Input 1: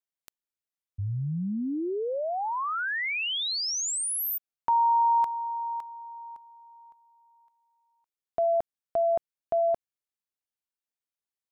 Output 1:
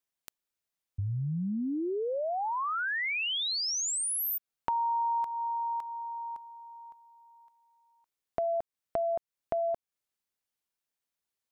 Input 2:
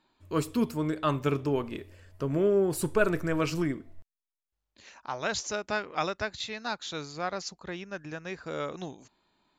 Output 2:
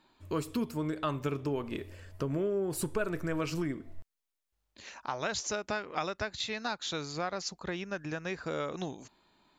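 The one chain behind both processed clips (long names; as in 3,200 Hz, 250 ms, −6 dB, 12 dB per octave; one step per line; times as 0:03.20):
downward compressor 3 to 1, threshold −36 dBFS
level +4 dB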